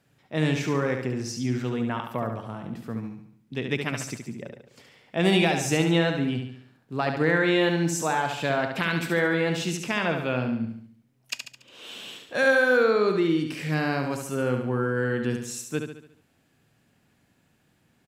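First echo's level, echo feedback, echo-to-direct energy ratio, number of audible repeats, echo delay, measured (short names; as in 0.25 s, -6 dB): -6.0 dB, 48%, -5.0 dB, 5, 71 ms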